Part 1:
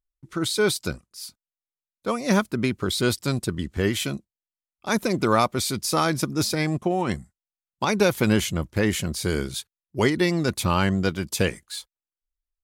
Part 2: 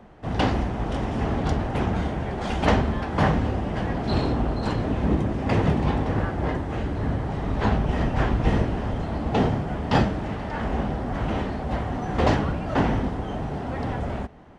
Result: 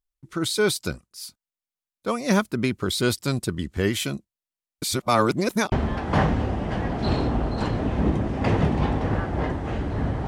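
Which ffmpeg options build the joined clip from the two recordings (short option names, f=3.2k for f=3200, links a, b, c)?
-filter_complex "[0:a]apad=whole_dur=10.27,atrim=end=10.27,asplit=2[a][b];[a]atrim=end=4.822[c];[b]atrim=start=4.818:end=5.722,asetpts=PTS-STARTPTS,areverse[d];[1:a]atrim=start=2.768:end=7.32[e];[c][d]acrossfade=d=0.004:c1=hsin:c2=hsin[f];[f][e]acrossfade=d=0.004:c1=hsin:c2=hsin"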